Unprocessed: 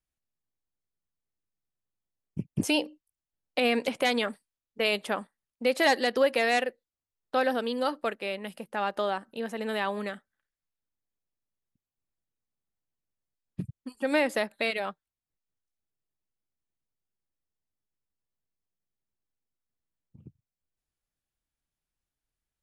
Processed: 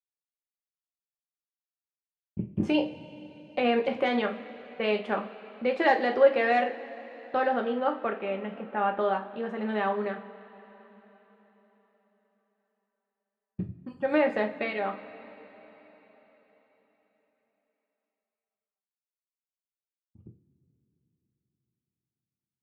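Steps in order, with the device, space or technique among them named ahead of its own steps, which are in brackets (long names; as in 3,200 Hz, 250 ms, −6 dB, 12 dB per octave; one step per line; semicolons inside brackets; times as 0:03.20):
hearing-loss simulation (low-pass filter 1,900 Hz 12 dB per octave; downward expander −48 dBFS)
0:07.67–0:09.01: flat-topped bell 6,700 Hz −12 dB
coupled-rooms reverb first 0.31 s, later 4.4 s, from −21 dB, DRR 2.5 dB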